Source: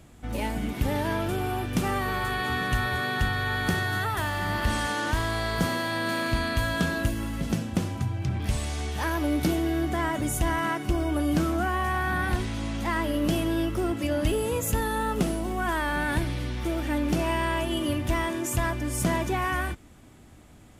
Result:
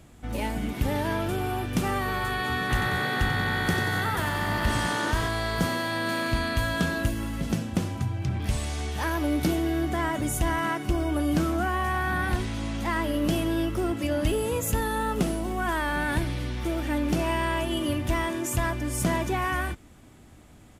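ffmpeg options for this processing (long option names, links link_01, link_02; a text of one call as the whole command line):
ffmpeg -i in.wav -filter_complex "[0:a]asplit=3[link_01][link_02][link_03];[link_01]afade=type=out:start_time=2.68:duration=0.02[link_04];[link_02]asplit=9[link_05][link_06][link_07][link_08][link_09][link_10][link_11][link_12][link_13];[link_06]adelay=92,afreqshift=61,volume=-8dB[link_14];[link_07]adelay=184,afreqshift=122,volume=-12.3dB[link_15];[link_08]adelay=276,afreqshift=183,volume=-16.6dB[link_16];[link_09]adelay=368,afreqshift=244,volume=-20.9dB[link_17];[link_10]adelay=460,afreqshift=305,volume=-25.2dB[link_18];[link_11]adelay=552,afreqshift=366,volume=-29.5dB[link_19];[link_12]adelay=644,afreqshift=427,volume=-33.8dB[link_20];[link_13]adelay=736,afreqshift=488,volume=-38.1dB[link_21];[link_05][link_14][link_15][link_16][link_17][link_18][link_19][link_20][link_21]amix=inputs=9:normalize=0,afade=type=in:start_time=2.68:duration=0.02,afade=type=out:start_time=5.27:duration=0.02[link_22];[link_03]afade=type=in:start_time=5.27:duration=0.02[link_23];[link_04][link_22][link_23]amix=inputs=3:normalize=0" out.wav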